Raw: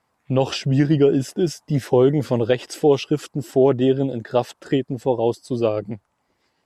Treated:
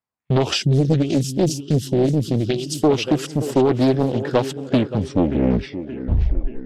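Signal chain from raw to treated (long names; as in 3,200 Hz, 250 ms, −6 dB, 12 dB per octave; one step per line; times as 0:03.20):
turntable brake at the end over 2.15 s
noise gate −37 dBFS, range −26 dB
parametric band 650 Hz −4 dB 2.7 octaves
downward compressor, threshold −18 dBFS, peak gain reduction 5.5 dB
on a send: tape delay 577 ms, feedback 60%, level −11 dB, low-pass 4,200 Hz
on the sum: gain on a spectral selection 0:00.62–0:02.83, 390–2,800 Hz −20 dB
highs frequency-modulated by the lows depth 0.79 ms
level +6.5 dB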